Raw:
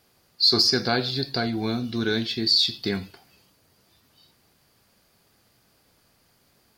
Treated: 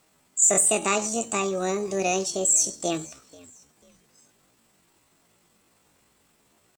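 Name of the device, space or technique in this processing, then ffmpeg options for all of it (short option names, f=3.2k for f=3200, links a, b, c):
chipmunk voice: -filter_complex "[0:a]asplit=3[a][b][c];[b]adelay=489,afreqshift=-37,volume=-23dB[d];[c]adelay=978,afreqshift=-74,volume=-31.6dB[e];[a][d][e]amix=inputs=3:normalize=0,asetrate=74167,aresample=44100,atempo=0.594604"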